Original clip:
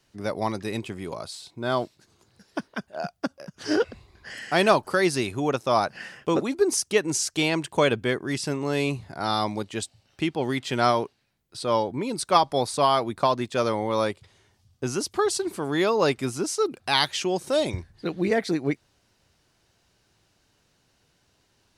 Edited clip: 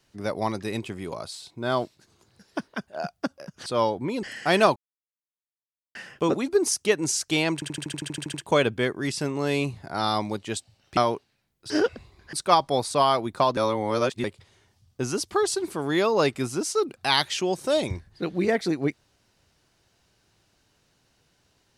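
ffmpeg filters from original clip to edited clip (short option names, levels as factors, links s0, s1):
-filter_complex "[0:a]asplit=20[s0][s1][s2][s3][s4][s5][s6][s7][s8][s9][s10][s11][s12][s13][s14][s15][s16][s17][s18][s19];[s0]atrim=end=3.662[s20];[s1]atrim=start=11.588:end=12.162[s21];[s2]atrim=start=4.288:end=4.82,asetpts=PTS-STARTPTS,afade=t=out:st=0.528:d=0.004:c=hsin[s22];[s3]atrim=start=4.82:end=6.01,asetpts=PTS-STARTPTS,volume=0[s23];[s4]atrim=start=6.01:end=7.682,asetpts=PTS-STARTPTS,afade=t=in:d=0.004:c=hsin[s24];[s5]atrim=start=7.598:end=7.682[s25];[s6]atrim=start=7.598:end=7.682[s26];[s7]atrim=start=7.598:end=7.682[s27];[s8]atrim=start=7.598:end=7.682[s28];[s9]atrim=start=7.598:end=7.682[s29];[s10]atrim=start=7.598:end=7.682[s30];[s11]atrim=start=7.598:end=7.682[s31];[s12]atrim=start=7.598:end=7.682[s32];[s13]atrim=start=7.598:end=7.682[s33];[s14]atrim=start=7.598:end=10.232[s34];[s15]atrim=start=10.858:end=11.592[s35];[s16]atrim=start=3.658:end=4.292[s36];[s17]atrim=start=12.158:end=13.402[s37];[s18]atrim=start=13.398:end=14.072,asetpts=PTS-STARTPTS,areverse[s38];[s19]atrim=start=14.068[s39];[s20][s21]acrossfade=d=0.004:c1=hsin:c2=hsin[s40];[s22][s23][s24]concat=n=3:v=0:a=1[s41];[s40][s41]acrossfade=d=0.004:c1=hsin:c2=hsin[s42];[s42][s25]acrossfade=d=0.004:c1=hsin:c2=hsin[s43];[s43][s26]acrossfade=d=0.004:c1=hsin:c2=hsin[s44];[s44][s27]acrossfade=d=0.004:c1=hsin:c2=hsin[s45];[s45][s28]acrossfade=d=0.004:c1=hsin:c2=hsin[s46];[s46][s29]acrossfade=d=0.004:c1=hsin:c2=hsin[s47];[s47][s30]acrossfade=d=0.004:c1=hsin:c2=hsin[s48];[s48][s31]acrossfade=d=0.004:c1=hsin:c2=hsin[s49];[s49][s32]acrossfade=d=0.004:c1=hsin:c2=hsin[s50];[s50][s33]acrossfade=d=0.004:c1=hsin:c2=hsin[s51];[s51][s34]acrossfade=d=0.004:c1=hsin:c2=hsin[s52];[s52][s35]acrossfade=d=0.004:c1=hsin:c2=hsin[s53];[s53][s36]acrossfade=d=0.004:c1=hsin:c2=hsin[s54];[s54][s37]acrossfade=d=0.004:c1=hsin:c2=hsin[s55];[s55][s38]acrossfade=d=0.004:c1=hsin:c2=hsin[s56];[s56][s39]acrossfade=d=0.004:c1=hsin:c2=hsin"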